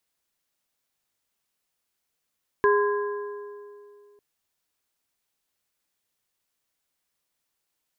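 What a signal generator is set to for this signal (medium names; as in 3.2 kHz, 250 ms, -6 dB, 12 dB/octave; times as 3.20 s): metal hit plate, lowest mode 411 Hz, modes 3, decay 2.49 s, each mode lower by 3.5 dB, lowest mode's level -17 dB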